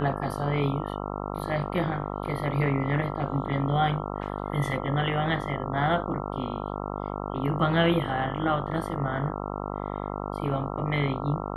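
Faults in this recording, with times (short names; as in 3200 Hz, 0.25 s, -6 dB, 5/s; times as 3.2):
buzz 50 Hz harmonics 27 -33 dBFS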